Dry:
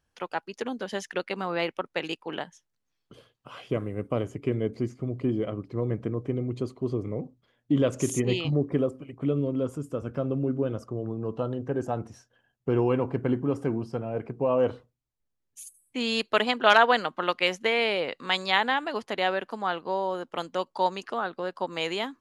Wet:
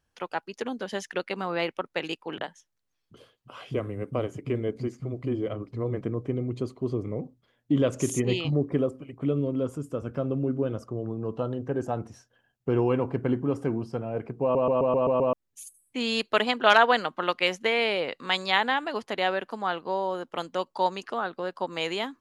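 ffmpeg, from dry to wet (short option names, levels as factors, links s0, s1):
-filter_complex "[0:a]asettb=1/sr,asplit=3[s0][s1][s2];[s0]atrim=end=2.384[s3];[s1]atrim=start=2.38:end=6.01,asetpts=PTS-STARTPTS,afade=t=in:d=0.004:c=qsin,afade=t=out:st=3.626:d=0.004:c=qsin,acrossover=split=200[s4][s5];[s5]adelay=30[s6];[s4][s6]amix=inputs=2:normalize=0,atrim=end_sample=160083[s7];[s2]atrim=start=6.006[s8];[s3][s7]acrossfade=d=0.004:c1=hsin:c2=qsin[s9];[s9][s8]acrossfade=d=0.004:c1=qsin:c2=hsin,asplit=8[s10][s11][s12][s13][s14][s15][s16][s17];[s10]atrim=end=14.552[s18];[s11]atrim=start=14.418:end=14.552[s19];[s12]atrim=start=14.418:end=14.552[s20];[s13]atrim=start=14.418:end=14.552[s21];[s14]atrim=start=14.418:end=14.552[s22];[s15]atrim=start=14.418:end=14.552[s23];[s16]atrim=start=14.418:end=14.552[s24];[s17]atrim=start=15.328[s25];[s18][s19]acrossfade=d=0.004:c1=hsin:c2=hsin[s26];[s26][s20]acrossfade=d=0.004:c1=hsin:c2=hsin[s27];[s27][s21]acrossfade=d=0.004:c1=hsin:c2=hsin[s28];[s28][s22]acrossfade=d=0.004:c1=hsin:c2=hsin[s29];[s29][s23]acrossfade=d=0.004:c1=hsin:c2=hsin[s30];[s30][s24]acrossfade=d=0.004:c1=hsin:c2=hsin[s31];[s31][s25]acrossfade=d=0.004:c1=hsin:c2=hsin"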